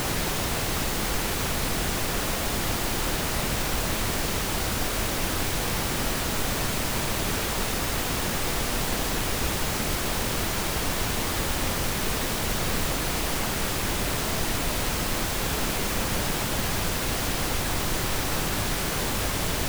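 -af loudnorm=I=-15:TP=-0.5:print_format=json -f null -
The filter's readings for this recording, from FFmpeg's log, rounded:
"input_i" : "-26.4",
"input_tp" : "-12.5",
"input_lra" : "0.1",
"input_thresh" : "-36.4",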